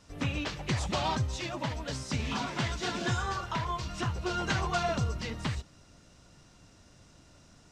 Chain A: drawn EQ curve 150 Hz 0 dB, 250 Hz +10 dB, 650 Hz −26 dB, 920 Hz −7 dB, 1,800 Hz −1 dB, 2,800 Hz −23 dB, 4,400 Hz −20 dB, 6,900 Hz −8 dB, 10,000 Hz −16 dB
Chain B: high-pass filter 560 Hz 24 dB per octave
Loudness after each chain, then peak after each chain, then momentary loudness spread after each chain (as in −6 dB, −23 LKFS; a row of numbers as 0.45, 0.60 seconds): −33.5, −35.5 LKFS; −17.0, −18.5 dBFS; 4, 8 LU